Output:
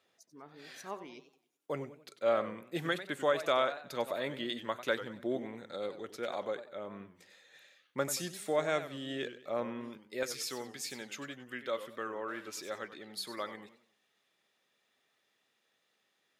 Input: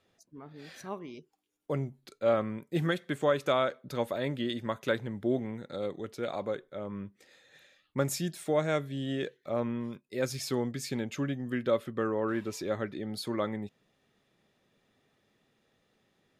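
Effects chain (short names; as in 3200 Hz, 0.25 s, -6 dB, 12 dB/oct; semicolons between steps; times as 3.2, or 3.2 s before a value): HPF 560 Hz 6 dB/oct, from 10.23 s 1400 Hz; warbling echo 94 ms, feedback 35%, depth 168 cents, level -12.5 dB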